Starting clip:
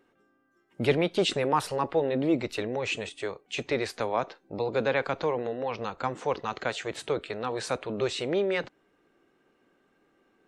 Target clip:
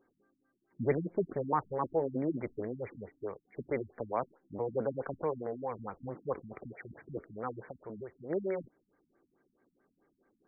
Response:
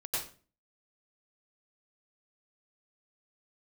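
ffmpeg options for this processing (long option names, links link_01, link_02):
-filter_complex "[0:a]asplit=3[link_01][link_02][link_03];[link_01]afade=type=out:start_time=7.67:duration=0.02[link_04];[link_02]acompressor=threshold=-34dB:ratio=12,afade=type=in:start_time=7.67:duration=0.02,afade=type=out:start_time=8.29:duration=0.02[link_05];[link_03]afade=type=in:start_time=8.29:duration=0.02[link_06];[link_04][link_05][link_06]amix=inputs=3:normalize=0,afftfilt=real='re*lt(b*sr/1024,260*pow(2400/260,0.5+0.5*sin(2*PI*4.6*pts/sr)))':imag='im*lt(b*sr/1024,260*pow(2400/260,0.5+0.5*sin(2*PI*4.6*pts/sr)))':win_size=1024:overlap=0.75,volume=-5dB"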